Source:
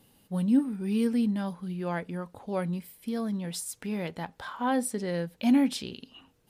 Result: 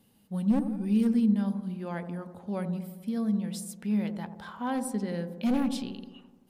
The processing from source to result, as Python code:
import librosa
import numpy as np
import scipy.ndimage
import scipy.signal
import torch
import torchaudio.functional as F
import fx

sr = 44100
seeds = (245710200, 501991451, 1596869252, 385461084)

y = np.minimum(x, 2.0 * 10.0 ** (-21.5 / 20.0) - x)
y = fx.peak_eq(y, sr, hz=210.0, db=10.5, octaves=0.28)
y = fx.echo_wet_lowpass(y, sr, ms=86, feedback_pct=63, hz=870.0, wet_db=-8.0)
y = F.gain(torch.from_numpy(y), -5.0).numpy()